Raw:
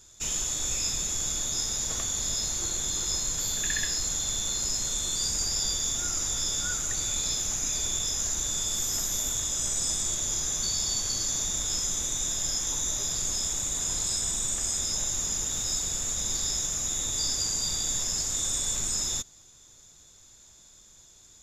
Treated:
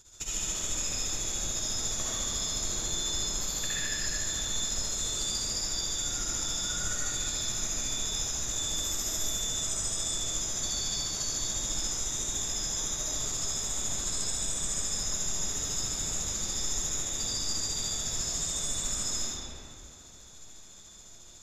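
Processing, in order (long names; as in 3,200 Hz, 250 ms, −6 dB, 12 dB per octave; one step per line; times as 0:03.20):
downward compressor, threshold −32 dBFS, peak gain reduction 8 dB
amplitude tremolo 14 Hz, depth 73%
comb and all-pass reverb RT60 2.7 s, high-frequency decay 0.6×, pre-delay 45 ms, DRR −8 dB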